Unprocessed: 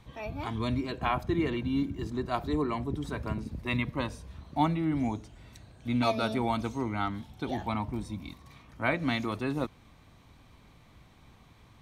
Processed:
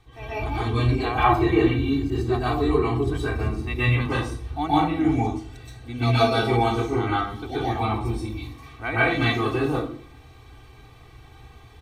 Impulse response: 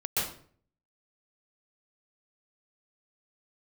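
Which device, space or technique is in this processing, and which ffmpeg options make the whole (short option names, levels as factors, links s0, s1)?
microphone above a desk: -filter_complex "[0:a]aecho=1:1:2.6:0.83[s0];[1:a]atrim=start_sample=2205[s1];[s0][s1]afir=irnorm=-1:irlink=0,asettb=1/sr,asplit=3[s2][s3][s4];[s2]atrim=end=1.244[s5];[s3]atrim=start=1.24:end=1.76,asetpts=PTS-STARTPTS,afade=t=in:d=0.004:c=qsin,afade=t=out:st=0.516:d=0.004:c=qsin,equalizer=f=880:t=o:w=1.1:g=6[s6];[s4]atrim=start=1.756[s7];[s5][s6]acrossfade=d=0.004:c1=hsin:c2=qsin[s8];[s8][s7]acrossfade=d=0.004:c1=qsin:c2=hsin,volume=0.794"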